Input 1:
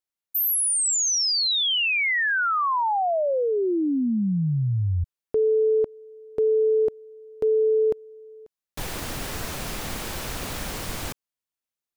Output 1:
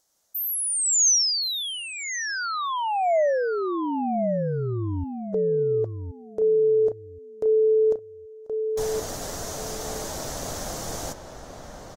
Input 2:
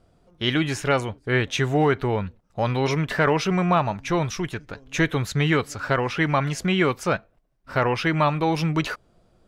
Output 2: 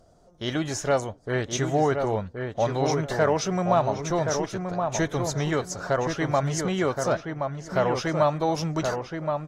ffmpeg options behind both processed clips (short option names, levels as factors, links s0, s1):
-filter_complex "[0:a]equalizer=f=630:t=o:w=0.67:g=9,equalizer=f=2500:t=o:w=0.67:g=-9,equalizer=f=6300:t=o:w=0.67:g=11,acompressor=mode=upward:threshold=0.00891:ratio=2.5:attack=0.21:release=468:knee=2.83:detection=peak,asplit=2[s0][s1];[s1]adelay=1073,lowpass=f=2000:p=1,volume=0.562,asplit=2[s2][s3];[s3]adelay=1073,lowpass=f=2000:p=1,volume=0.21,asplit=2[s4][s5];[s5]adelay=1073,lowpass=f=2000:p=1,volume=0.21[s6];[s2][s4][s6]amix=inputs=3:normalize=0[s7];[s0][s7]amix=inputs=2:normalize=0,volume=0.531" -ar 48000 -c:a aac -b:a 48k